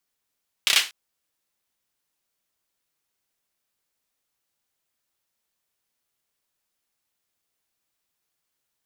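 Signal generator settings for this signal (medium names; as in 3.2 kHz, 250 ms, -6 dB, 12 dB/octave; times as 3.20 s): hand clap length 0.24 s, apart 30 ms, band 2.9 kHz, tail 0.28 s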